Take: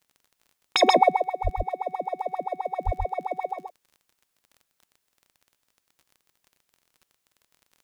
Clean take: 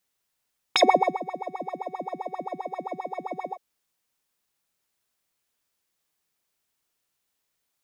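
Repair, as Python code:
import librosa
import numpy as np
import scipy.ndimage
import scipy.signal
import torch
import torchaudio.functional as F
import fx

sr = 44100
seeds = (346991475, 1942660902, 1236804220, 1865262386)

y = fx.fix_declick_ar(x, sr, threshold=6.5)
y = fx.highpass(y, sr, hz=140.0, slope=24, at=(1.43, 1.55), fade=0.02)
y = fx.highpass(y, sr, hz=140.0, slope=24, at=(2.85, 2.97), fade=0.02)
y = fx.fix_echo_inverse(y, sr, delay_ms=131, level_db=-4.0)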